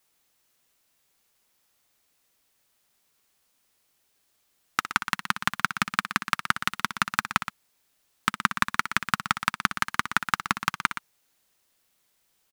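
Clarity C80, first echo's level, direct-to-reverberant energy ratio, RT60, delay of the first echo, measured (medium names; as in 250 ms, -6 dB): no reverb, -11.5 dB, no reverb, no reverb, 61 ms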